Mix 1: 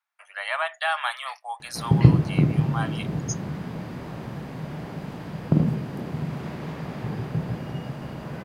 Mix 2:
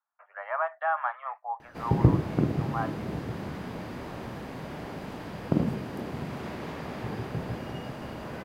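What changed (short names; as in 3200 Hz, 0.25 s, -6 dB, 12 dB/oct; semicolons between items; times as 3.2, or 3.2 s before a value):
speech: add LPF 1400 Hz 24 dB/oct; background: add bell 150 Hz -10 dB 0.71 oct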